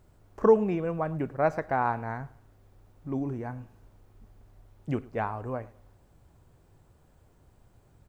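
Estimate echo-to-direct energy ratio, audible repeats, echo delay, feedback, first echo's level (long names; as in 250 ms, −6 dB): −21.0 dB, 2, 107 ms, 35%, −21.5 dB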